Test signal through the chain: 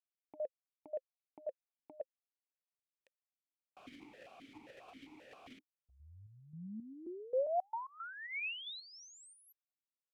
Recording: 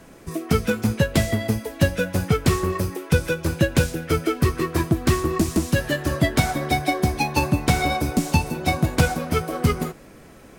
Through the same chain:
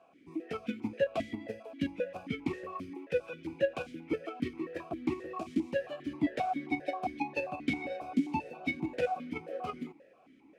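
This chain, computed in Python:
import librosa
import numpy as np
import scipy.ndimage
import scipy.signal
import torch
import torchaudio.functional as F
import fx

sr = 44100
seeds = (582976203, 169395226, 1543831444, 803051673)

p1 = fx.level_steps(x, sr, step_db=19)
p2 = x + F.gain(torch.from_numpy(p1), 0.5).numpy()
p3 = fx.vowel_held(p2, sr, hz=7.5)
y = F.gain(torch.from_numpy(p3), -5.5).numpy()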